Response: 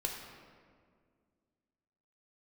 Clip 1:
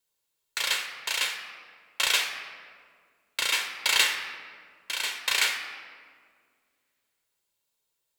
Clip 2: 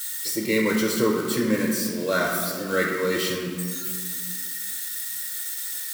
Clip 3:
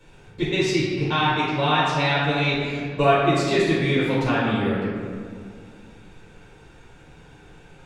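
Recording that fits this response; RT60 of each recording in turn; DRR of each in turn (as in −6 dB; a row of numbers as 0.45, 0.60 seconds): 2; 2.0, 2.0, 2.0 seconds; 4.5, −0.5, −9.0 decibels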